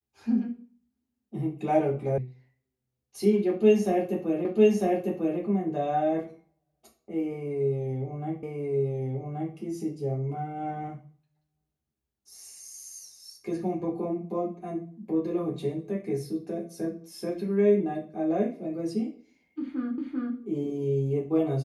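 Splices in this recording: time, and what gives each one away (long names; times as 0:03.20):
0:02.18: cut off before it has died away
0:04.45: the same again, the last 0.95 s
0:08.43: the same again, the last 1.13 s
0:19.98: the same again, the last 0.39 s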